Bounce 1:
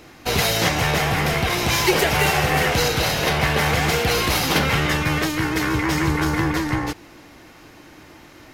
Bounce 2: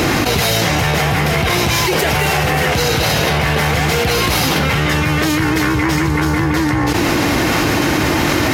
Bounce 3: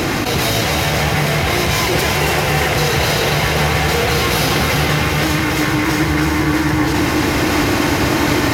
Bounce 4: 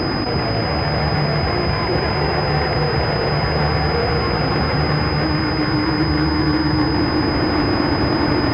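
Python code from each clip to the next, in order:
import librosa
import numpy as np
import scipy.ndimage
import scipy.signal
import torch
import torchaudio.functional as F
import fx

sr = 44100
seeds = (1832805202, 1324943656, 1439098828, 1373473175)

y1 = scipy.signal.sosfilt(scipy.signal.butter(2, 65.0, 'highpass', fs=sr, output='sos'), x)
y1 = fx.low_shelf(y1, sr, hz=180.0, db=4.5)
y1 = fx.env_flatten(y1, sr, amount_pct=100)
y1 = y1 * librosa.db_to_amplitude(-2.0)
y2 = y1 + 10.0 ** (-5.0 / 20.0) * np.pad(y1, (int(284 * sr / 1000.0), 0))[:len(y1)]
y2 = fx.echo_crushed(y2, sr, ms=394, feedback_pct=80, bits=7, wet_db=-8.0)
y2 = y2 * librosa.db_to_amplitude(-3.0)
y3 = fx.air_absorb(y2, sr, metres=250.0)
y3 = np.repeat(scipy.signal.resample_poly(y3, 1, 6), 6)[:len(y3)]
y3 = fx.pwm(y3, sr, carrier_hz=5000.0)
y3 = y3 * librosa.db_to_amplitude(-1.0)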